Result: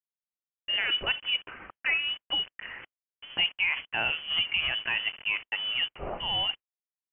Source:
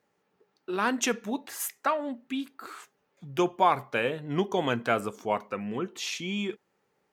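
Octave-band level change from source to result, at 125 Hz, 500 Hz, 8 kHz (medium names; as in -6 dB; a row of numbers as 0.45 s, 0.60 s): -10.5 dB, -14.0 dB, under -40 dB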